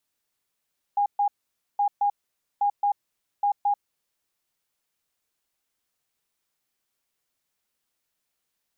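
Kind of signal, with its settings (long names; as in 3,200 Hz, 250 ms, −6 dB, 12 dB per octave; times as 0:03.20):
beeps in groups sine 815 Hz, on 0.09 s, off 0.13 s, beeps 2, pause 0.51 s, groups 4, −19 dBFS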